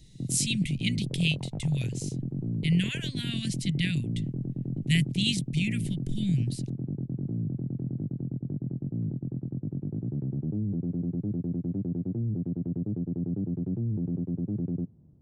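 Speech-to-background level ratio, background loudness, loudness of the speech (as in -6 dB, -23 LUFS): 3.5 dB, -33.0 LUFS, -29.5 LUFS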